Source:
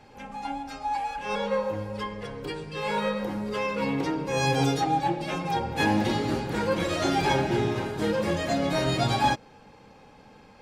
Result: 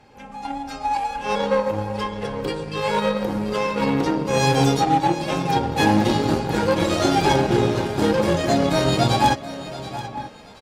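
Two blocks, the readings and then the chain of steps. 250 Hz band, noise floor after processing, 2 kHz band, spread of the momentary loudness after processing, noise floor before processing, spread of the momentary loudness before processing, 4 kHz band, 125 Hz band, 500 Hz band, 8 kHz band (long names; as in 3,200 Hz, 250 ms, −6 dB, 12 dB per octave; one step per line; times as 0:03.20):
+7.0 dB, −42 dBFS, +4.0 dB, 13 LU, −53 dBFS, 11 LU, +6.0 dB, +6.5 dB, +7.0 dB, +7.0 dB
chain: dynamic equaliser 2,000 Hz, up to −5 dB, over −46 dBFS, Q 1.4
in parallel at −2 dB: downward compressor, threshold −33 dBFS, peak gain reduction 13.5 dB
on the sum: slap from a distant wall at 160 metres, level −11 dB
automatic gain control gain up to 6 dB
harmonic generator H 3 −12 dB, 5 −14 dB, 7 −19 dB, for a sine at −4.5 dBFS
on a send: feedback echo with a high-pass in the loop 729 ms, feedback 31%, high-pass 760 Hz, level −13.5 dB
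on the sum: level +2 dB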